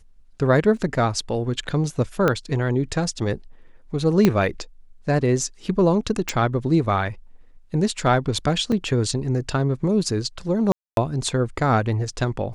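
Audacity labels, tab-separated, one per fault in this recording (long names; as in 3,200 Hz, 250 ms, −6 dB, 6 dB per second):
0.770000	0.770000	drop-out 2.3 ms
2.280000	2.280000	click −7 dBFS
4.250000	4.250000	click −4 dBFS
6.290000	6.290000	click
8.720000	8.720000	drop-out 3.4 ms
10.720000	10.970000	drop-out 252 ms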